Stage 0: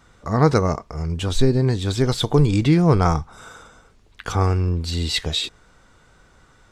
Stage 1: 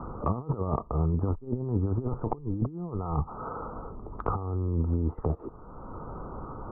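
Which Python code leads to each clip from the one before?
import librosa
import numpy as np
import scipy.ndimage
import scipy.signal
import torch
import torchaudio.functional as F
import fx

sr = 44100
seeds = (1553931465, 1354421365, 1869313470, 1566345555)

y = fx.over_compress(x, sr, threshold_db=-24.0, ratio=-0.5)
y = scipy.signal.sosfilt(scipy.signal.cheby1(6, 3, 1300.0, 'lowpass', fs=sr, output='sos'), y)
y = fx.band_squash(y, sr, depth_pct=70)
y = y * 10.0 ** (-1.5 / 20.0)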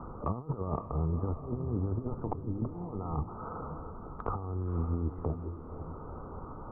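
y = fx.echo_diffused(x, sr, ms=539, feedback_pct=47, wet_db=-9)
y = y * 10.0 ** (-5.0 / 20.0)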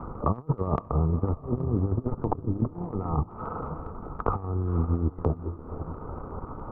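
y = fx.transient(x, sr, attack_db=3, sustain_db=-9)
y = y * 10.0 ** (6.0 / 20.0)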